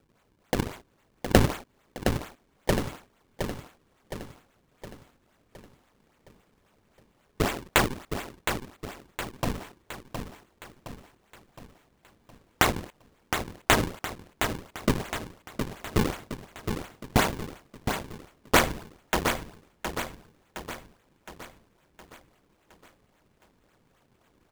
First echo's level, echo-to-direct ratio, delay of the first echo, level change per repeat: −7.0 dB, −5.5 dB, 715 ms, −6.0 dB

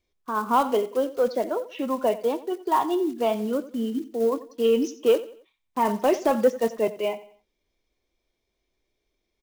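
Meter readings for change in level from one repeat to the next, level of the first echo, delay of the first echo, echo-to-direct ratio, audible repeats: −9.0 dB, −17.0 dB, 90 ms, −16.5 dB, 3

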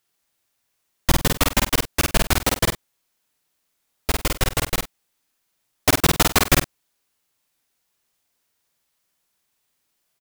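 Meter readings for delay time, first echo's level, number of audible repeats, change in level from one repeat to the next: 50 ms, −3.0 dB, 2, repeats not evenly spaced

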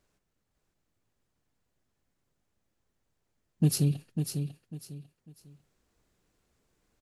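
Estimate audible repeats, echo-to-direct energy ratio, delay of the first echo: 3, −6.5 dB, 548 ms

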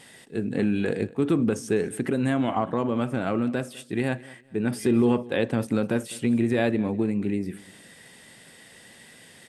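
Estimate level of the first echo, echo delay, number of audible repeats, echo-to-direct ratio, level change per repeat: −21.0 dB, 203 ms, 2, −20.5 dB, −11.5 dB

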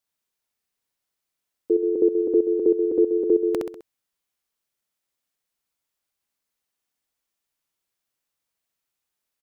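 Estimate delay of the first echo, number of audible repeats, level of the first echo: 65 ms, 4, −3.5 dB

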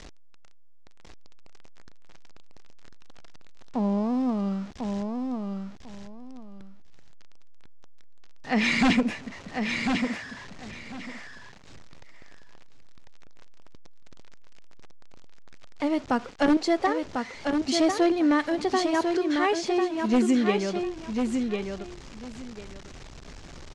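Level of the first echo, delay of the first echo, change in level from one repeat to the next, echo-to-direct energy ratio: −5.0 dB, 1,047 ms, −14.0 dB, −5.0 dB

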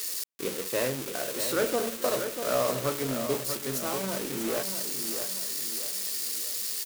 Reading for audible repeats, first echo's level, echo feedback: 4, −8.0 dB, 41%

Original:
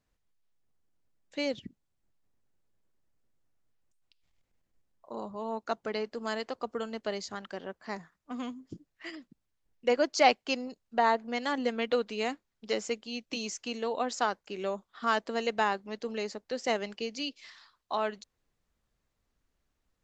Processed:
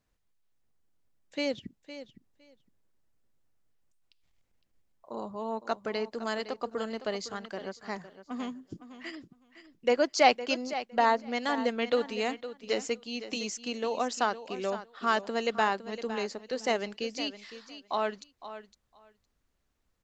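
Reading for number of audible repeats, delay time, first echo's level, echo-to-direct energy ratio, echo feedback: 2, 510 ms, −13.0 dB, −13.0 dB, 15%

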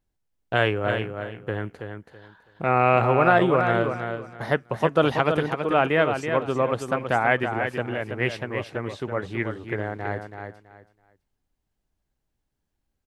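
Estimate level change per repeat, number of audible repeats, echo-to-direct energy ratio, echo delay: −13.0 dB, 3, −7.0 dB, 328 ms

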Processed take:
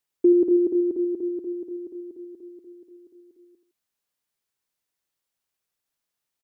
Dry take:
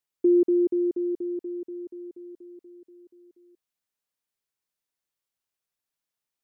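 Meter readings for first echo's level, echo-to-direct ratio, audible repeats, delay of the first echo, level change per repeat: −10.0 dB, −9.5 dB, 2, 81 ms, −9.0 dB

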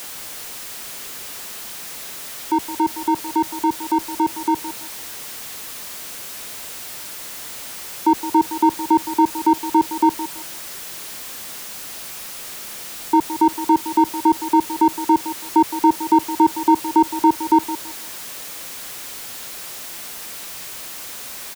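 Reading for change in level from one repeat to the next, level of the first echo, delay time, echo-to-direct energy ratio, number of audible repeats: −12.5 dB, −13.0 dB, 165 ms, −12.5 dB, 2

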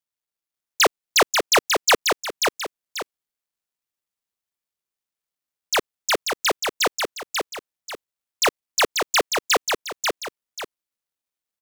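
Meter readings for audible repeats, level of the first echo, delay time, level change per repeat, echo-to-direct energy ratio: 2, −4.5 dB, 538 ms, −9.5 dB, −4.0 dB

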